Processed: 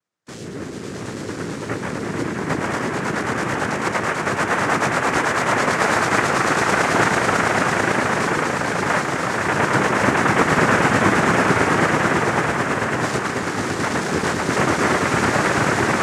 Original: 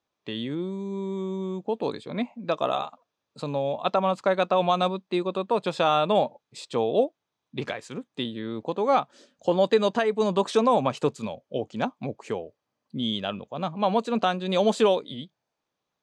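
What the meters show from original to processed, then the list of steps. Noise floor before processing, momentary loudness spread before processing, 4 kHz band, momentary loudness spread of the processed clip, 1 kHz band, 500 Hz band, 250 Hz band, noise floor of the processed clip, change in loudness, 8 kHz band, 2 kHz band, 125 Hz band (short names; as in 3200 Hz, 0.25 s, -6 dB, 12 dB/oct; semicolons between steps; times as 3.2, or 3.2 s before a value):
-84 dBFS, 14 LU, +5.0 dB, 10 LU, +8.0 dB, +2.5 dB, +7.5 dB, -31 dBFS, +7.5 dB, +19.5 dB, +19.5 dB, +11.0 dB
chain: swelling echo 0.11 s, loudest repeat 8, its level -3 dB; noise vocoder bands 3; gain -1.5 dB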